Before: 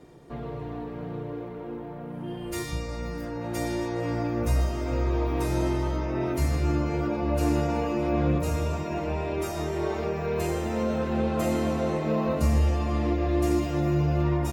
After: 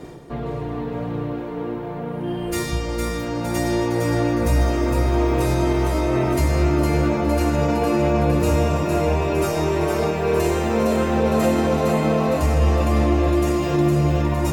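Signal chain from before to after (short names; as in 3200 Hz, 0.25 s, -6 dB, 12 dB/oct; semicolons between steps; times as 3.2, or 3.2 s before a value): reverse; upward compressor, threshold -35 dBFS; reverse; limiter -18.5 dBFS, peak gain reduction 7 dB; thinning echo 0.46 s, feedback 57%, high-pass 160 Hz, level -4.5 dB; gain +7.5 dB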